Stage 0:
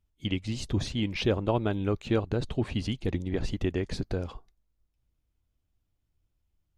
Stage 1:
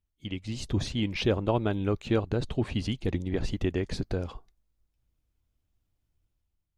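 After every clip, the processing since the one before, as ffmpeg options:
ffmpeg -i in.wav -af "dynaudnorm=framelen=110:gausssize=9:maxgain=7.5dB,volume=-7dB" out.wav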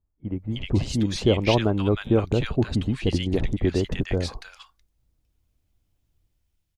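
ffmpeg -i in.wav -filter_complex "[0:a]acrossover=split=1300[link_01][link_02];[link_02]adelay=310[link_03];[link_01][link_03]amix=inputs=2:normalize=0,volume=6dB" out.wav

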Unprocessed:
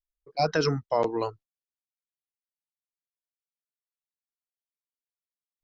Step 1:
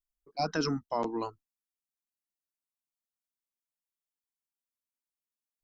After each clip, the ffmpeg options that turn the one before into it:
ffmpeg -i in.wav -af "equalizer=frequency=125:width_type=o:width=1:gain=-11,equalizer=frequency=250:width_type=o:width=1:gain=6,equalizer=frequency=500:width_type=o:width=1:gain=-11,equalizer=frequency=2000:width_type=o:width=1:gain=-7,equalizer=frequency=4000:width_type=o:width=1:gain=-5" out.wav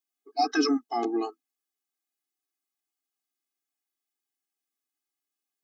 ffmpeg -i in.wav -af "afftfilt=real='re*eq(mod(floor(b*sr/1024/220),2),1)':imag='im*eq(mod(floor(b*sr/1024/220),2),1)':win_size=1024:overlap=0.75,volume=8dB" out.wav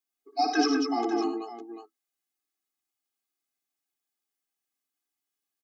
ffmpeg -i in.wav -af "aecho=1:1:59|89|194|556:0.398|0.335|0.531|0.224,volume=-1dB" out.wav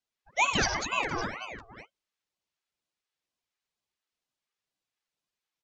ffmpeg -i in.wav -af "highpass=760,lowpass=5000,aeval=exprs='val(0)*sin(2*PI*1100*n/s+1100*0.7/2.1*sin(2*PI*2.1*n/s))':channel_layout=same,volume=6.5dB" out.wav

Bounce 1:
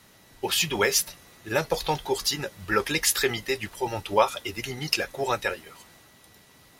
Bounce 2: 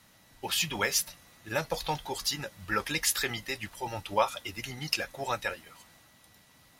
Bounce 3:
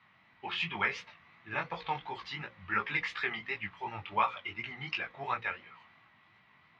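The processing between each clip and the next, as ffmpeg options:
ffmpeg -i in.wav -af "equalizer=frequency=400:width_type=o:width=0.4:gain=-9,volume=-4.5dB" out.wav
ffmpeg -i in.wav -af "highpass=110,equalizer=frequency=280:width_type=q:width=4:gain=-7,equalizer=frequency=540:width_type=q:width=4:gain=-10,equalizer=frequency=1100:width_type=q:width=4:gain=7,equalizer=frequency=2200:width_type=q:width=4:gain=7,lowpass=frequency=3100:width=0.5412,lowpass=frequency=3100:width=1.3066,bandreject=frequency=60:width_type=h:width=6,bandreject=frequency=120:width_type=h:width=6,bandreject=frequency=180:width_type=h:width=6,bandreject=frequency=240:width_type=h:width=6,bandreject=frequency=300:width_type=h:width=6,bandreject=frequency=360:width_type=h:width=6,bandreject=frequency=420:width_type=h:width=6,bandreject=frequency=480:width_type=h:width=6,bandreject=frequency=540:width_type=h:width=6,flanger=delay=16.5:depth=6.2:speed=2.8" out.wav

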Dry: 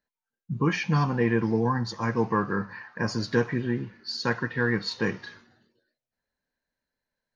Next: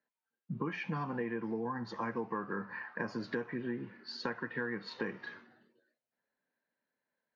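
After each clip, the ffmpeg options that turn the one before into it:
ffmpeg -i in.wav -filter_complex "[0:a]highpass=97,acrossover=split=160 3200:gain=0.178 1 0.112[link_01][link_02][link_03];[link_01][link_02][link_03]amix=inputs=3:normalize=0,acompressor=threshold=-34dB:ratio=6" out.wav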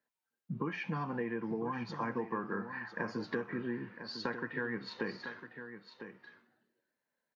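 ffmpeg -i in.wav -af "aecho=1:1:1003:0.299" out.wav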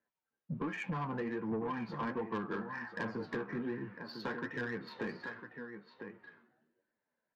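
ffmpeg -i in.wav -af "adynamicsmooth=sensitivity=5:basefreq=2700,flanger=delay=8.6:depth=6.4:regen=35:speed=1.3:shape=triangular,asoftclip=type=tanh:threshold=-35.5dB,volume=5.5dB" out.wav

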